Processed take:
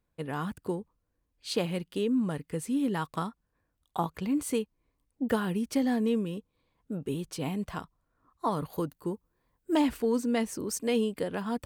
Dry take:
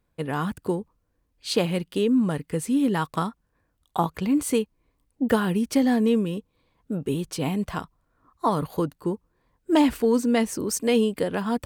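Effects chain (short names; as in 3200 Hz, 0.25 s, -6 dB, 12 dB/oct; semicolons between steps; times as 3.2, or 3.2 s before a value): 8.73–9.76 high shelf 11000 Hz +11 dB; gain -6.5 dB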